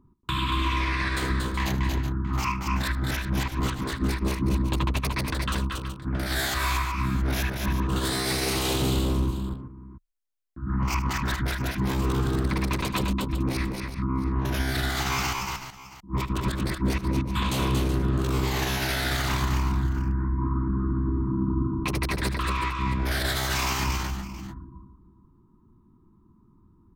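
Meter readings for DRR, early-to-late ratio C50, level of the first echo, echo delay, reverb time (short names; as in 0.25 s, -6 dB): none, none, -15.0 dB, 76 ms, none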